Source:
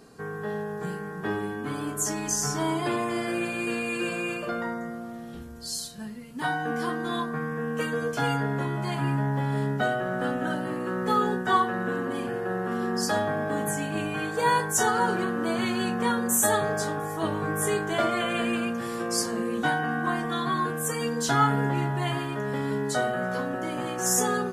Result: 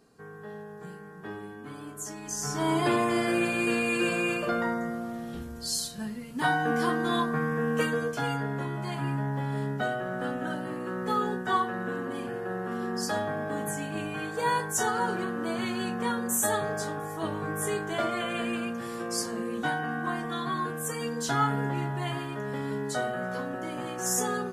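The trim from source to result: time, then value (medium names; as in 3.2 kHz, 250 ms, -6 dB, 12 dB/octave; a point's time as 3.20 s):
2.21 s -10 dB
2.78 s +2.5 dB
7.80 s +2.5 dB
8.22 s -4 dB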